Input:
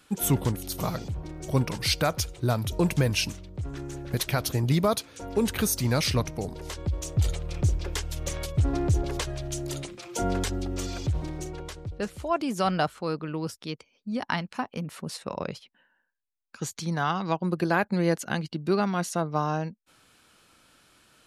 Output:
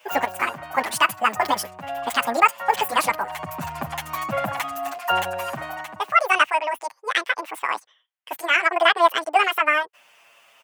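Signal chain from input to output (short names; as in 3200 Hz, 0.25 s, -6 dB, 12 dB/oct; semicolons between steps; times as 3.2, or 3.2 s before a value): tone controls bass -8 dB, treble +1 dB; speed mistake 7.5 ips tape played at 15 ips; HPF 80 Hz; band shelf 1300 Hz +12.5 dB 2.8 oct; endless flanger 7.8 ms -0.62 Hz; gain +1 dB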